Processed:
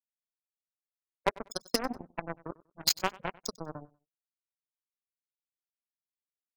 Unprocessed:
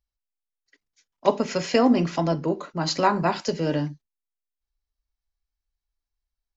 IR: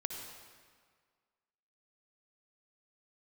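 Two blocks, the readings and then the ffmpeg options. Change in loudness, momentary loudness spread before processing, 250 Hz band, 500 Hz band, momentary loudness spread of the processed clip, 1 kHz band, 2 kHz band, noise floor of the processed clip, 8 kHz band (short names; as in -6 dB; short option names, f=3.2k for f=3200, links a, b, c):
-10.0 dB, 8 LU, -17.5 dB, -14.0 dB, 15 LU, -11.5 dB, -7.0 dB, under -85 dBFS, n/a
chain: -af "aemphasis=mode=production:type=75fm,bandreject=f=2.9k:w=9.8,afftfilt=real='re*gte(hypot(re,im),0.2)':imag='im*gte(hypot(re,im),0.2)':win_size=1024:overlap=0.75,highpass=75,highshelf=f=3.7k:g=9,acompressor=threshold=-25dB:ratio=3,aeval=exprs='0.168*(cos(1*acos(clip(val(0)/0.168,-1,1)))-cos(1*PI/2))+0.0668*(cos(3*acos(clip(val(0)/0.168,-1,1)))-cos(3*PI/2))+0.00668*(cos(5*acos(clip(val(0)/0.168,-1,1)))-cos(5*PI/2))+0.00106*(cos(7*acos(clip(val(0)/0.168,-1,1)))-cos(7*PI/2))':c=same,aecho=1:1:96|192:0.0841|0.021"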